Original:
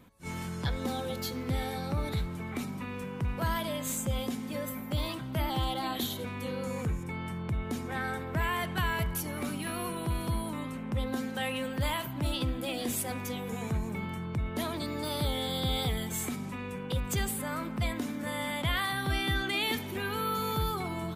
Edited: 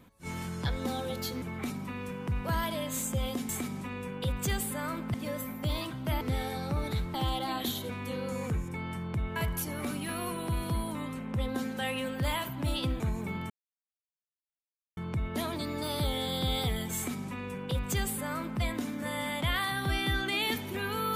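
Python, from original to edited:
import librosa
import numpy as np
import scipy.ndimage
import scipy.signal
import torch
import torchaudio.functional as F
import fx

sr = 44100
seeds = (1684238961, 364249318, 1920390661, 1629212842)

y = fx.edit(x, sr, fx.move(start_s=1.42, length_s=0.93, to_s=5.49),
    fx.cut(start_s=7.71, length_s=1.23),
    fx.cut(start_s=12.58, length_s=1.1),
    fx.insert_silence(at_s=14.18, length_s=1.47),
    fx.duplicate(start_s=16.17, length_s=1.65, to_s=4.42), tone=tone)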